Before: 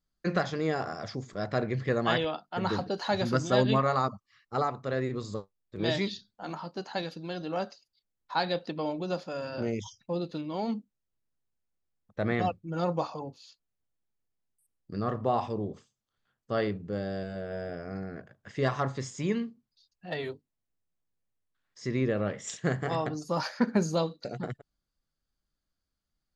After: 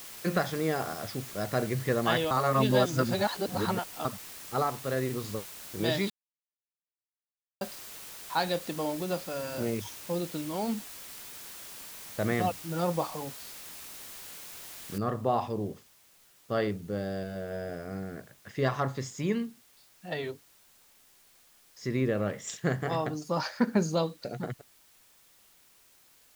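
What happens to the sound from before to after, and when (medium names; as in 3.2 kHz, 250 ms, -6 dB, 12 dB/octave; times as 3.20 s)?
2.31–4.05 s: reverse
6.10–7.61 s: mute
14.98 s: noise floor step -45 dB -61 dB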